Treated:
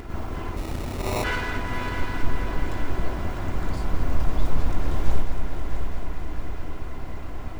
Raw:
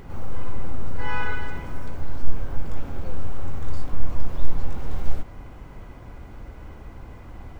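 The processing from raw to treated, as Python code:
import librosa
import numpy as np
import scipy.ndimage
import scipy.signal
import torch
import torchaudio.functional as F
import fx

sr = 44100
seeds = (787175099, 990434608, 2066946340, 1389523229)

y = fx.lower_of_two(x, sr, delay_ms=2.9)
y = fx.echo_heads(y, sr, ms=217, heads='first and third', feedback_pct=68, wet_db=-9.5)
y = fx.sample_hold(y, sr, seeds[0], rate_hz=1600.0, jitter_pct=0, at=(0.56, 1.23), fade=0.02)
y = F.gain(torch.from_numpy(y), 5.5).numpy()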